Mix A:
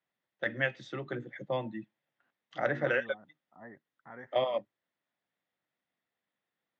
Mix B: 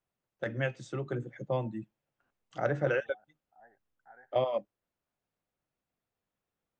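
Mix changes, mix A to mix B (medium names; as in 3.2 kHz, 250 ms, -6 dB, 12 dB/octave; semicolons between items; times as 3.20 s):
second voice: add two resonant band-passes 1.1 kHz, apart 1 oct; master: remove cabinet simulation 180–5400 Hz, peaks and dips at 420 Hz -4 dB, 1.9 kHz +10 dB, 3.5 kHz +7 dB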